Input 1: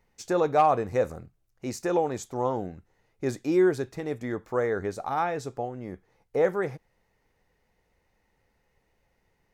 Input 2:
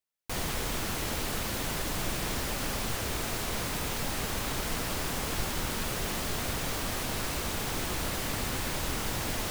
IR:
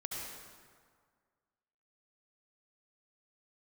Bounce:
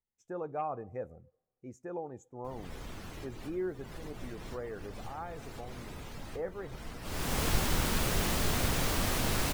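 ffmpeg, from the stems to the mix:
-filter_complex "[0:a]equalizer=f=4400:w=3.7:g=-13.5,volume=0.168,asplit=3[s0][s1][s2];[s1]volume=0.075[s3];[1:a]adelay=2150,afade=t=in:st=7.01:d=0.4:silence=0.223872,asplit=2[s4][s5];[s5]volume=0.168[s6];[s2]apad=whole_len=514135[s7];[s4][s7]sidechaincompress=threshold=0.00501:ratio=4:attack=38:release=245[s8];[2:a]atrim=start_sample=2205[s9];[s3][s6]amix=inputs=2:normalize=0[s10];[s10][s9]afir=irnorm=-1:irlink=0[s11];[s0][s8][s11]amix=inputs=3:normalize=0,afftdn=nr=15:nf=-52,lowshelf=f=240:g=4"

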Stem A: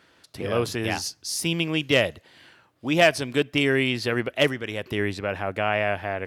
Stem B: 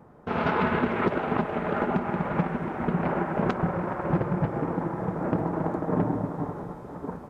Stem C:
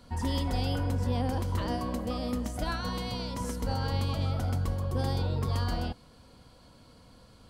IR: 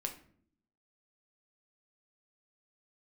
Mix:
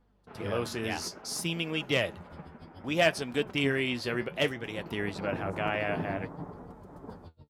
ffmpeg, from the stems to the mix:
-filter_complex "[0:a]agate=range=0.112:threshold=0.00562:ratio=16:detection=peak,volume=0.75[s0];[1:a]aeval=exprs='val(0)+0.00501*(sin(2*PI*50*n/s)+sin(2*PI*2*50*n/s)/2+sin(2*PI*3*50*n/s)/3+sin(2*PI*4*50*n/s)/4+sin(2*PI*5*50*n/s)/5)':c=same,volume=0.501,afade=t=in:st=4.57:d=0.66:silence=0.298538[s1];[2:a]aeval=exprs='val(0)*pow(10,-38*(0.5-0.5*cos(2*PI*6.9*n/s))/20)':c=same,adelay=2050,volume=0.178[s2];[s0][s1][s2]amix=inputs=3:normalize=0,flanger=delay=4.1:depth=9.4:regen=56:speed=0.6:shape=sinusoidal"

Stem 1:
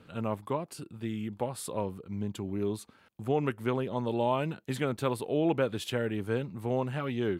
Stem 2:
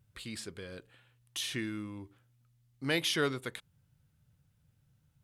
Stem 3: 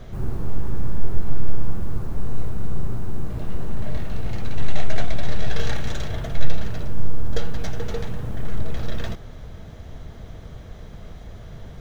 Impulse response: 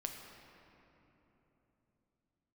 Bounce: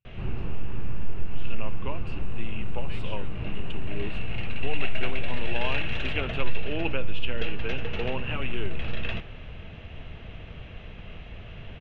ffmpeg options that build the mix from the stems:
-filter_complex "[0:a]highpass=200,adelay=1350,volume=1.26[s0];[1:a]volume=0.178[s1];[2:a]adelay=50,volume=1.19[s2];[s0][s1][s2]amix=inputs=3:normalize=0,lowpass=f=2700:t=q:w=9.3,flanger=delay=9.1:depth=3.9:regen=-84:speed=1.2:shape=triangular,acompressor=threshold=0.0708:ratio=1.5"

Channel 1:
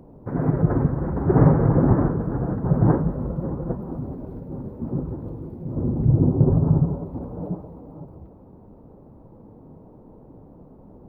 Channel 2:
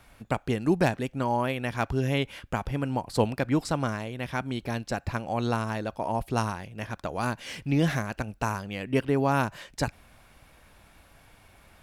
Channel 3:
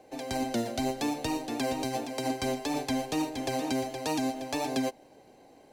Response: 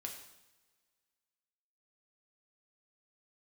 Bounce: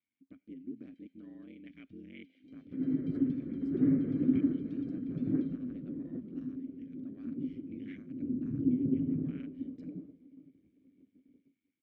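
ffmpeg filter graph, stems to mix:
-filter_complex "[0:a]adelay=2450,volume=0.891[s0];[1:a]dynaudnorm=f=630:g=3:m=1.68,aeval=exprs='val(0)*sin(2*PI*48*n/s)':c=same,volume=0.422,asplit=3[s1][s2][s3];[s2]volume=0.0841[s4];[2:a]equalizer=f=3100:t=o:w=2.8:g=13,acompressor=threshold=0.0126:ratio=1.5,adelay=650,volume=0.335,afade=t=in:st=2.21:d=0.61:silence=0.251189[s5];[s3]apad=whole_len=596697[s6];[s0][s6]sidechaingate=range=0.0224:threshold=0.00112:ratio=16:detection=peak[s7];[s1][s5]amix=inputs=2:normalize=0,afwtdn=0.0141,alimiter=level_in=1.19:limit=0.0631:level=0:latency=1:release=39,volume=0.841,volume=1[s8];[3:a]atrim=start_sample=2205[s9];[s4][s9]afir=irnorm=-1:irlink=0[s10];[s7][s8][s10]amix=inputs=3:normalize=0,asplit=3[s11][s12][s13];[s11]bandpass=f=270:t=q:w=8,volume=1[s14];[s12]bandpass=f=2290:t=q:w=8,volume=0.501[s15];[s13]bandpass=f=3010:t=q:w=8,volume=0.355[s16];[s14][s15][s16]amix=inputs=3:normalize=0"

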